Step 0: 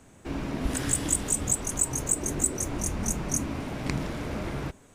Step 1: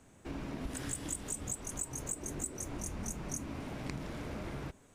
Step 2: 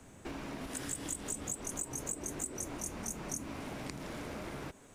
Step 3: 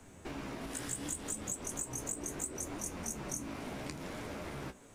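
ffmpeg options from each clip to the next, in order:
-af "acompressor=threshold=-31dB:ratio=2.5,volume=-6.5dB"
-filter_complex "[0:a]acrossover=split=190|590|6300[a][b][c][d];[a]acompressor=threshold=-56dB:ratio=4[e];[b]acompressor=threshold=-50dB:ratio=4[f];[c]acompressor=threshold=-51dB:ratio=4[g];[d]acompressor=threshold=-44dB:ratio=4[h];[e][f][g][h]amix=inputs=4:normalize=0,volume=5.5dB"
-af "flanger=delay=9:depth=9.7:regen=47:speed=0.71:shape=triangular,volume=4dB"

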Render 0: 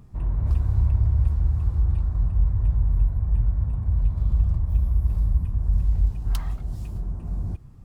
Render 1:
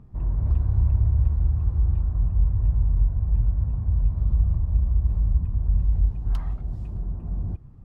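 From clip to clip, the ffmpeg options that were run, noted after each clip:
-af "lowpass=f=1.1k:p=1"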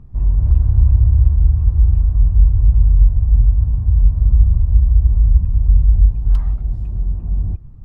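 -af "lowshelf=f=90:g=12,volume=1dB"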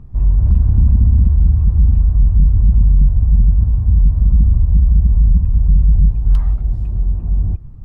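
-af "aeval=exprs='0.891*sin(PI/2*1.58*val(0)/0.891)':c=same,volume=-4.5dB"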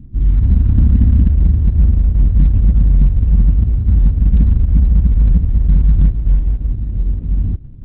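-af "lowpass=f=280:t=q:w=3.5,aemphasis=mode=production:type=cd" -ar 48000 -c:a libopus -b:a 8k

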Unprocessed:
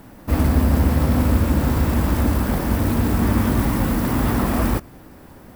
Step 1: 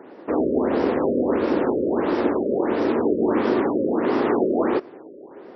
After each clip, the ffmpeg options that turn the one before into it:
-af "highpass=f=390:t=q:w=3.8,adynamicsmooth=sensitivity=6:basefreq=4.9k,afftfilt=real='re*lt(b*sr/1024,600*pow(5900/600,0.5+0.5*sin(2*PI*1.5*pts/sr)))':imag='im*lt(b*sr/1024,600*pow(5900/600,0.5+0.5*sin(2*PI*1.5*pts/sr)))':win_size=1024:overlap=0.75"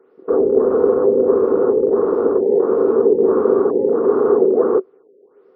-filter_complex "[0:a]afwtdn=0.0447,superequalizer=7b=3.98:10b=2.51,acrossover=split=250|1400[a][b][c];[c]acompressor=threshold=-47dB:ratio=4[d];[a][b][d]amix=inputs=3:normalize=0,volume=-1.5dB"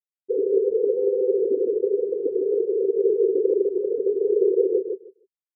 -filter_complex "[0:a]afftfilt=real='re*gte(hypot(re,im),1)':imag='im*gte(hypot(re,im),1)':win_size=1024:overlap=0.75,bass=f=250:g=11,treble=f=4k:g=-5,asplit=2[a][b];[b]adelay=153,lowpass=f=1.2k:p=1,volume=-5dB,asplit=2[c][d];[d]adelay=153,lowpass=f=1.2k:p=1,volume=0.16,asplit=2[e][f];[f]adelay=153,lowpass=f=1.2k:p=1,volume=0.16[g];[c][e][g]amix=inputs=3:normalize=0[h];[a][h]amix=inputs=2:normalize=0,volume=-8dB"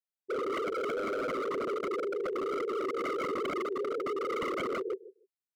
-af "aeval=exprs='0.075*(abs(mod(val(0)/0.075+3,4)-2)-1)':c=same,volume=-5.5dB"

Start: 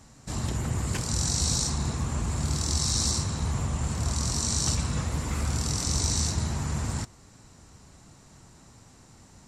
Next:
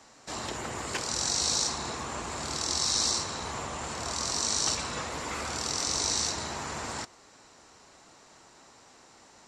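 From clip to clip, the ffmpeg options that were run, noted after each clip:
-filter_complex "[0:a]acrossover=split=330 6800:gain=0.0891 1 0.224[a][b][c];[a][b][c]amix=inputs=3:normalize=0,volume=3.5dB"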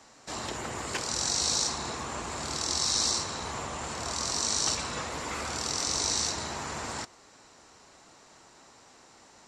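-af anull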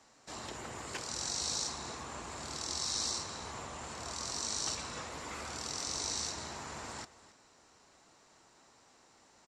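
-af "aecho=1:1:276:0.133,volume=-8dB"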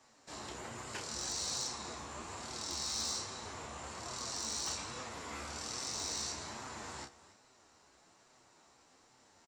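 -filter_complex "[0:a]asplit=2[a][b];[b]adelay=31,volume=-5dB[c];[a][c]amix=inputs=2:normalize=0,flanger=delay=7.8:depth=6.5:regen=42:speed=1.2:shape=sinusoidal,volume=30.5dB,asoftclip=hard,volume=-30.5dB,volume=1dB"

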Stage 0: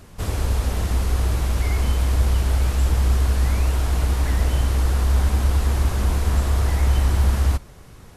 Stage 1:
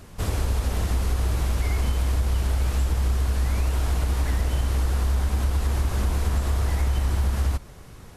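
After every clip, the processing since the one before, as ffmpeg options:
-af "acompressor=threshold=-19dB:ratio=6"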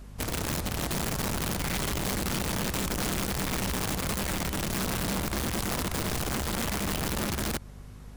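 -af "aeval=exprs='(mod(10*val(0)+1,2)-1)/10':c=same,aeval=exprs='val(0)+0.0126*(sin(2*PI*50*n/s)+sin(2*PI*2*50*n/s)/2+sin(2*PI*3*50*n/s)/3+sin(2*PI*4*50*n/s)/4+sin(2*PI*5*50*n/s)/5)':c=same,volume=-6dB"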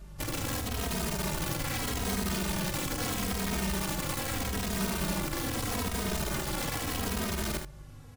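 -filter_complex "[0:a]asplit=2[a][b];[b]aecho=0:1:47|77:0.355|0.376[c];[a][c]amix=inputs=2:normalize=0,asplit=2[d][e];[e]adelay=2.9,afreqshift=-0.79[f];[d][f]amix=inputs=2:normalize=1"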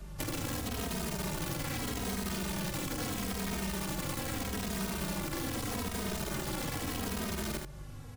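-filter_complex "[0:a]acrossover=split=130|420[a][b][c];[a]acompressor=threshold=-45dB:ratio=4[d];[b]acompressor=threshold=-41dB:ratio=4[e];[c]acompressor=threshold=-40dB:ratio=4[f];[d][e][f]amix=inputs=3:normalize=0,volume=3dB"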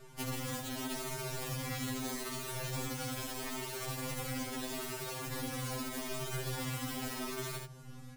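-af "afftfilt=real='re*2.45*eq(mod(b,6),0)':imag='im*2.45*eq(mod(b,6),0)':win_size=2048:overlap=0.75"

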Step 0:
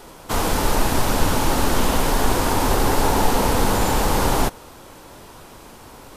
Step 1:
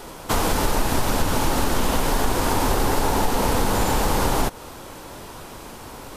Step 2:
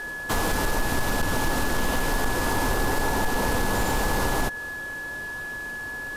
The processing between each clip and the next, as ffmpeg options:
-af "acompressor=threshold=-22dB:ratio=3,volume=4dB"
-af "asoftclip=type=hard:threshold=-14.5dB,aeval=exprs='val(0)+0.0398*sin(2*PI*1700*n/s)':c=same,volume=-3.5dB"

